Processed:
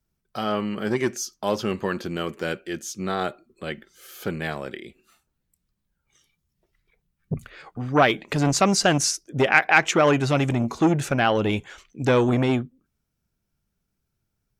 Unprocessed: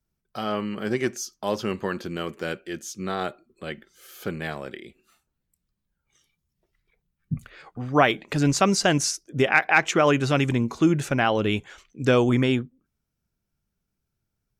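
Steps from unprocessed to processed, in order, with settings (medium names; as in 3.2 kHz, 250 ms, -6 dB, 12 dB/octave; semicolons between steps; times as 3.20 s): transformer saturation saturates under 900 Hz; trim +2.5 dB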